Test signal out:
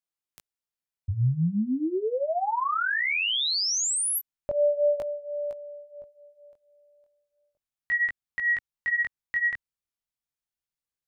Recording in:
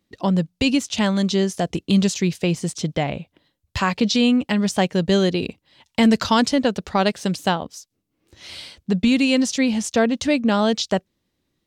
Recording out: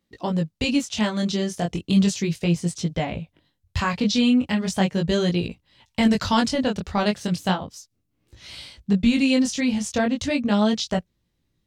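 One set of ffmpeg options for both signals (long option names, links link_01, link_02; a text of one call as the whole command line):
ffmpeg -i in.wav -af "asubboost=boost=2.5:cutoff=180,flanger=delay=17:depth=7.2:speed=0.36" out.wav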